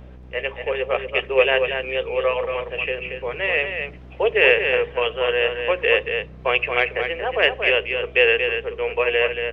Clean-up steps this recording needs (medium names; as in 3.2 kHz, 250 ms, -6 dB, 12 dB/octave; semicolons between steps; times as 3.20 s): de-hum 62.7 Hz, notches 13; expander -30 dBFS, range -21 dB; inverse comb 231 ms -6.5 dB